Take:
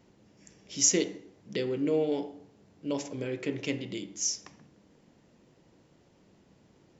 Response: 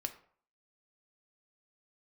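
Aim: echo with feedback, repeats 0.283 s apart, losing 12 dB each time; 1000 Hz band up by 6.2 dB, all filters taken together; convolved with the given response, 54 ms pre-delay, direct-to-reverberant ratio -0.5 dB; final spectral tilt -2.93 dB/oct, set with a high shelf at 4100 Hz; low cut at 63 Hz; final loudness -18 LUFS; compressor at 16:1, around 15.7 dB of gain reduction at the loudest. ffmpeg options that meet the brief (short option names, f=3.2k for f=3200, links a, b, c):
-filter_complex "[0:a]highpass=63,equalizer=f=1k:t=o:g=7.5,highshelf=f=4.1k:g=8.5,acompressor=threshold=-28dB:ratio=16,aecho=1:1:283|566|849:0.251|0.0628|0.0157,asplit=2[a][b];[1:a]atrim=start_sample=2205,adelay=54[c];[b][c]afir=irnorm=-1:irlink=0,volume=1dB[d];[a][d]amix=inputs=2:normalize=0,volume=13.5dB"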